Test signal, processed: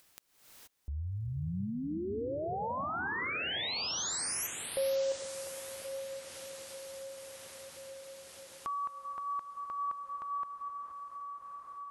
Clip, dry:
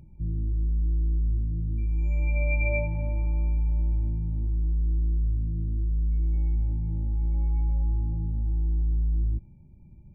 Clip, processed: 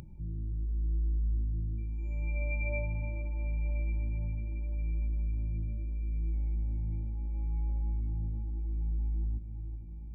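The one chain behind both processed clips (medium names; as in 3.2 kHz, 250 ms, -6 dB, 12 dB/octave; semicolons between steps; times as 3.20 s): echo that smears into a reverb 1165 ms, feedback 40%, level -11 dB; gated-style reverb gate 500 ms rising, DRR 6 dB; upward compressor, threshold -30 dBFS; trim -8 dB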